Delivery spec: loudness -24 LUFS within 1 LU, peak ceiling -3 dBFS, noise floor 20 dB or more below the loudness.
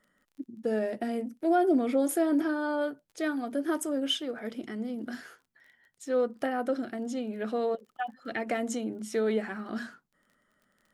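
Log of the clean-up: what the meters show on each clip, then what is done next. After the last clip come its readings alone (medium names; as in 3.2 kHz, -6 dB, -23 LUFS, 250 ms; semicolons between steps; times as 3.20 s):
tick rate 29 per s; loudness -30.5 LUFS; peak level -16.0 dBFS; loudness target -24.0 LUFS
-> de-click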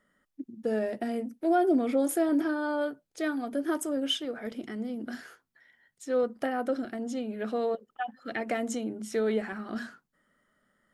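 tick rate 0.091 per s; loudness -31.0 LUFS; peak level -16.0 dBFS; loudness target -24.0 LUFS
-> trim +7 dB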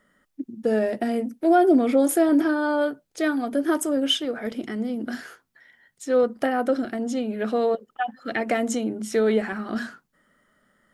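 loudness -24.0 LUFS; peak level -9.0 dBFS; noise floor -72 dBFS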